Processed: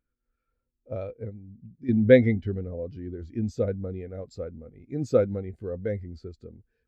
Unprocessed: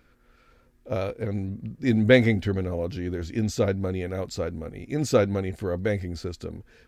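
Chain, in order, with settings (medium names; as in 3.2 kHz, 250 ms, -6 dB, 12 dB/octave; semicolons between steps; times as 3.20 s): 1.29–1.89 s: compression 4:1, threshold -33 dBFS, peak gain reduction 11 dB; spectral contrast expander 1.5:1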